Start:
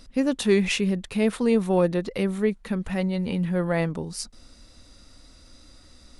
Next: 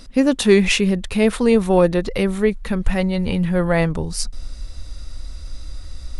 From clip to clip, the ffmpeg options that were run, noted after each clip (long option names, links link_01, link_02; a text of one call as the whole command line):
ffmpeg -i in.wav -af "asubboost=boost=7:cutoff=84,volume=7.5dB" out.wav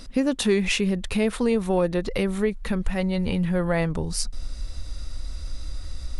ffmpeg -i in.wav -af "acompressor=threshold=-24dB:ratio=2" out.wav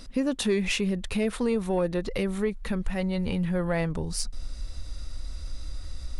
ffmpeg -i in.wav -af "asoftclip=type=tanh:threshold=-11.5dB,volume=-3dB" out.wav